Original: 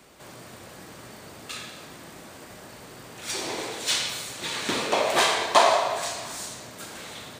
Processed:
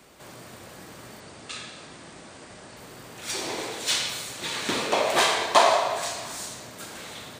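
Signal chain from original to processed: 1.20–2.77 s: elliptic low-pass 9.1 kHz, stop band 40 dB

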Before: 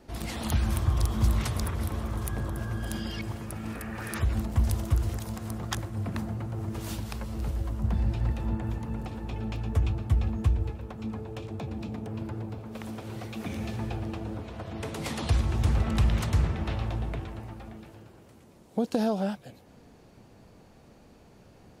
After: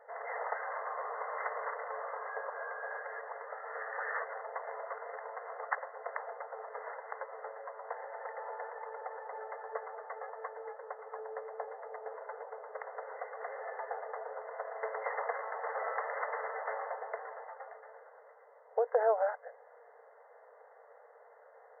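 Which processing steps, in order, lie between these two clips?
brick-wall FIR band-pass 430–2100 Hz; trim +3 dB

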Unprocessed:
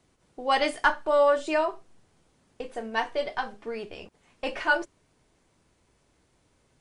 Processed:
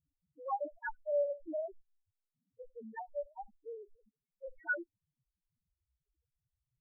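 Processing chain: loudest bins only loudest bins 1; reverb removal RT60 1.5 s; level-controlled noise filter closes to 480 Hz, open at -29 dBFS; trim -4.5 dB

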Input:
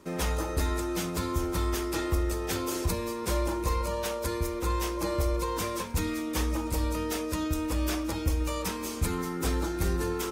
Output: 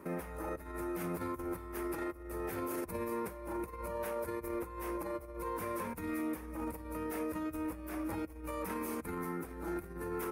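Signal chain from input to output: compressor with a negative ratio -33 dBFS, ratio -0.5; high-order bell 4.8 kHz -15 dB; peak limiter -28 dBFS, peak gain reduction 9 dB; bass shelf 68 Hz -11.5 dB; trim -1 dB

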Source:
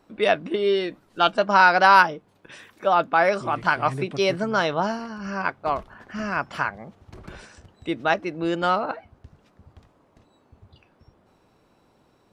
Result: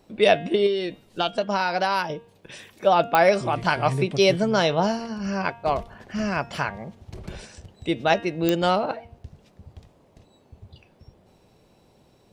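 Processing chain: peaking EQ 1.3 kHz -10.5 dB 1.2 oct; 0.66–2.10 s: compression 6:1, threshold -26 dBFS, peak gain reduction 9.5 dB; peaking EQ 290 Hz -5.5 dB 0.5 oct; de-hum 233.2 Hz, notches 16; clicks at 3.15/8.49 s, -12 dBFS; trim +6 dB

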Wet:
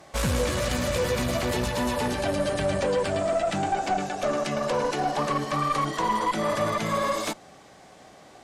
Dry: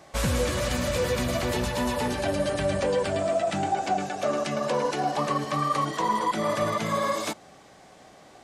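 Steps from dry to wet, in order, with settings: valve stage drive 19 dB, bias 0.4; trim +2.5 dB

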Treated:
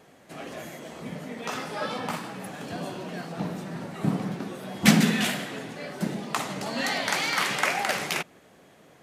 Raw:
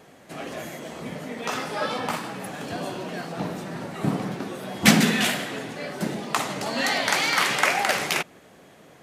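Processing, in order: dynamic bell 180 Hz, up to +5 dB, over -40 dBFS, Q 1.8; trim -4 dB

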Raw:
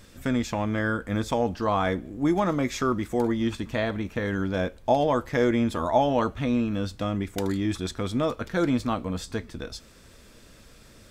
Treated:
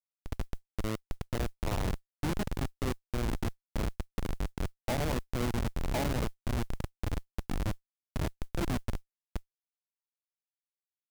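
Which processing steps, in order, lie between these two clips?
echo that smears into a reverb 1029 ms, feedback 54%, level -8.5 dB; dynamic bell 4 kHz, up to -4 dB, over -43 dBFS, Q 0.79; Schmitt trigger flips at -19 dBFS; modulation noise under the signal 35 dB; trim -3.5 dB

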